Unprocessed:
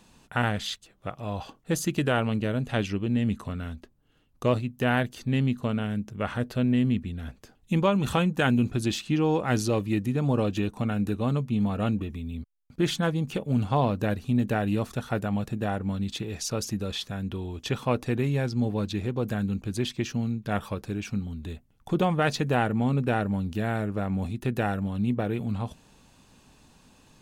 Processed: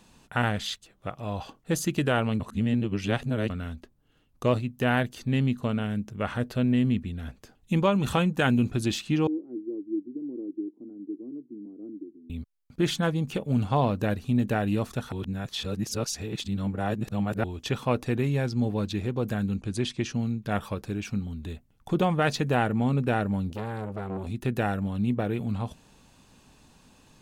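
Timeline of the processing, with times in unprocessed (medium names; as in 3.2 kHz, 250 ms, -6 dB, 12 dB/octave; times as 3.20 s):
2.40–3.50 s: reverse
9.27–12.30 s: Butterworth band-pass 320 Hz, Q 4.1
15.12–17.44 s: reverse
19.57–20.16 s: steep low-pass 11 kHz 72 dB/octave
23.50–24.27 s: transformer saturation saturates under 850 Hz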